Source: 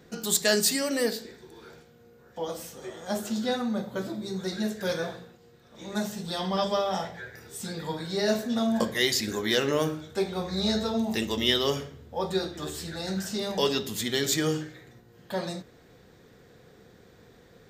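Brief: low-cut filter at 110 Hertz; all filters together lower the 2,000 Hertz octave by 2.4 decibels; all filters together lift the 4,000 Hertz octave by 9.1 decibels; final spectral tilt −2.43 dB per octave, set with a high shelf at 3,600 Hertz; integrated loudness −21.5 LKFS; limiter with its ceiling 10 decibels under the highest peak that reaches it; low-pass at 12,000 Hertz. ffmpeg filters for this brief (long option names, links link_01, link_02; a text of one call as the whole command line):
ffmpeg -i in.wav -af "highpass=110,lowpass=12000,equalizer=frequency=2000:width_type=o:gain=-7,highshelf=frequency=3600:gain=7.5,equalizer=frequency=4000:width_type=o:gain=8,volume=4dB,alimiter=limit=-7.5dB:level=0:latency=1" out.wav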